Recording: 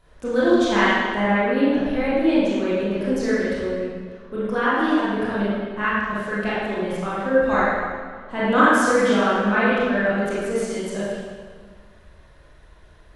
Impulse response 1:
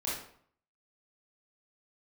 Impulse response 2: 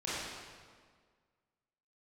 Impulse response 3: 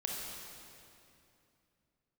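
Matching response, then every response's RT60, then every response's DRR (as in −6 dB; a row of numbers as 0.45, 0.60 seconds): 2; 0.60, 1.7, 2.7 seconds; −7.5, −10.5, −2.0 decibels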